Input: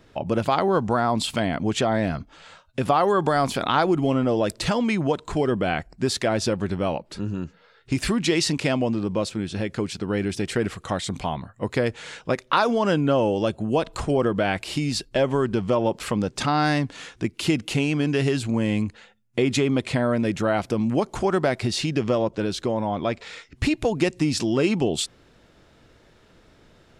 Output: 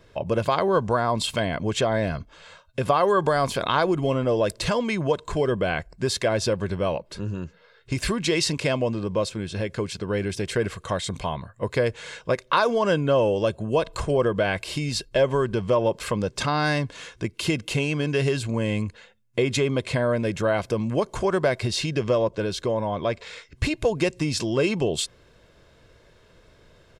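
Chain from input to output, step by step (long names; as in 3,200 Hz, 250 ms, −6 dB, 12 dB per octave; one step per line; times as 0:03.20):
comb filter 1.9 ms, depth 44%
level −1 dB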